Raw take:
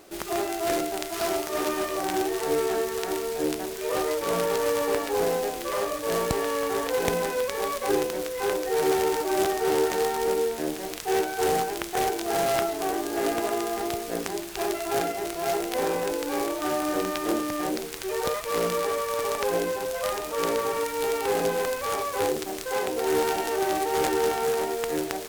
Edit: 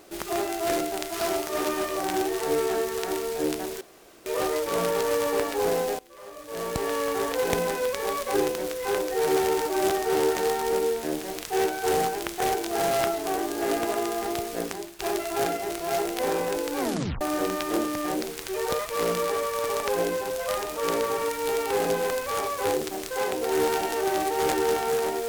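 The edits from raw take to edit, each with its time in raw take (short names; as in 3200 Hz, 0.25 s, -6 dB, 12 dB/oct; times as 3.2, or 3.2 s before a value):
3.81 insert room tone 0.45 s
5.54–6.47 fade in quadratic, from -21 dB
14.15–14.54 fade out, to -12 dB
16.34 tape stop 0.42 s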